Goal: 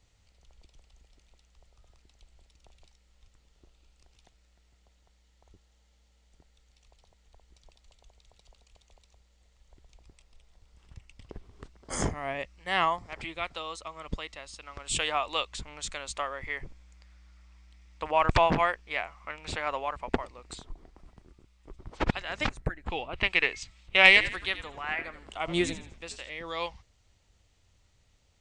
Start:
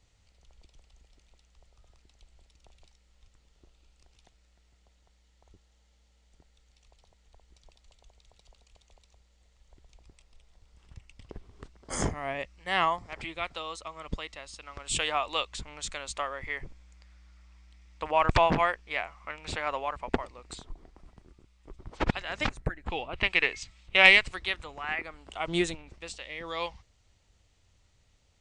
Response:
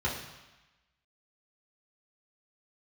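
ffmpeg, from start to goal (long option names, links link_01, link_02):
-filter_complex "[0:a]asettb=1/sr,asplit=3[link_01][link_02][link_03];[link_01]atrim=end=24.074[link_04];[link_02]atrim=start=24.07:end=26.3,asetpts=PTS-STARTPTS,afade=type=in:duration=0.004:curve=qsin,afade=type=out:start_time=2.226:duration=0.004:curve=qsin,asplit=5[link_05][link_06][link_07][link_08][link_09];[link_06]adelay=82,afreqshift=-81,volume=-12dB[link_10];[link_07]adelay=164,afreqshift=-162,volume=-20.9dB[link_11];[link_08]adelay=246,afreqshift=-243,volume=-29.7dB[link_12];[link_09]adelay=328,afreqshift=-324,volume=-38.6dB[link_13];[link_05][link_10][link_11][link_12][link_13]amix=inputs=5:normalize=0,atrim=end_sample=98343[link_14];[link_03]atrim=start=26.296[link_15];[link_04][link_14]acrossfade=duration=0.004:curve1=hsin:curve2=qsin[link_16];[link_16][link_15]acrossfade=duration=0.004:curve1=qsin:curve2=hsin"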